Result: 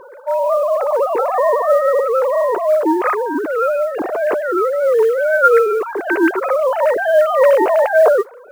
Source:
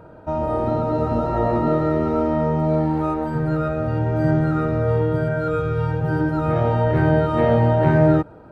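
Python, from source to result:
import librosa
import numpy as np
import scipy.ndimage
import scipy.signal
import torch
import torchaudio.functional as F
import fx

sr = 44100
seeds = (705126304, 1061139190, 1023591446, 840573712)

y = fx.sine_speech(x, sr)
y = fx.notch(y, sr, hz=830.0, q=12.0)
y = fx.mod_noise(y, sr, seeds[0], snr_db=31)
y = y * 10.0 ** (4.5 / 20.0)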